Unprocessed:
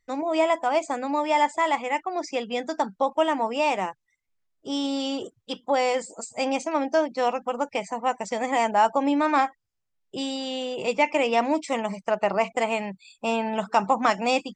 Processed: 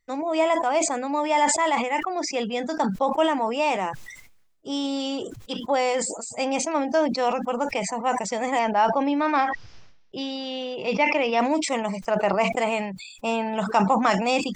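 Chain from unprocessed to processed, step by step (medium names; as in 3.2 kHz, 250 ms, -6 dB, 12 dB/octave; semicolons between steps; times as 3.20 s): 8.59–11.40 s: elliptic low-pass 5.7 kHz, stop band 60 dB; decay stretcher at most 57 dB/s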